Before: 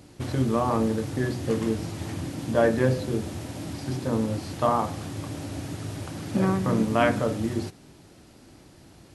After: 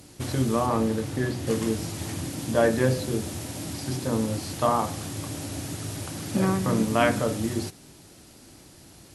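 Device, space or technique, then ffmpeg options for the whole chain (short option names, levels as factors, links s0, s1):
exciter from parts: -filter_complex "[0:a]asplit=2[s0][s1];[s1]highpass=f=2700:p=1,asoftclip=type=tanh:threshold=0.0112,volume=0.224[s2];[s0][s2]amix=inputs=2:normalize=0,asettb=1/sr,asplit=3[s3][s4][s5];[s3]atrim=end=0.664[s6];[s4]atrim=start=0.66:end=1.47,asetpts=PTS-STARTPTS,afade=t=in:d=0.004:c=qsin,afade=t=out:st=0.806:d=0.004:c=qsin,acrossover=split=4000[s7][s8];[s8]acompressor=threshold=0.00316:ratio=4:attack=1:release=60[s9];[s7][s9]amix=inputs=2:normalize=0[s10];[s5]atrim=start=1.466[s11];[s6][s10]acrossfade=d=0.004:c1=hsin:c2=qsin[s12];[s12][s11]acrossfade=d=0.004:c1=qsin:c2=hsin,aemphasis=mode=production:type=cd"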